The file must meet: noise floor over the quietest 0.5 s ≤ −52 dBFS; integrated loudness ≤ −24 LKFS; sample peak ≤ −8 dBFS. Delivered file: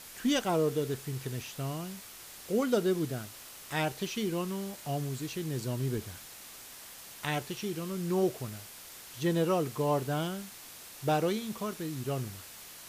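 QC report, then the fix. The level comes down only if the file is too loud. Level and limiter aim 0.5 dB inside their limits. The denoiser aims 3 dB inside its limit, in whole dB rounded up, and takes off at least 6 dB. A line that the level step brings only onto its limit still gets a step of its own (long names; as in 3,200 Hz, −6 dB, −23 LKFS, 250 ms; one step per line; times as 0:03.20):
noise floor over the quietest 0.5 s −49 dBFS: out of spec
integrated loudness −33.0 LKFS: in spec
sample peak −16.0 dBFS: in spec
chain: broadband denoise 6 dB, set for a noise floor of −49 dBFS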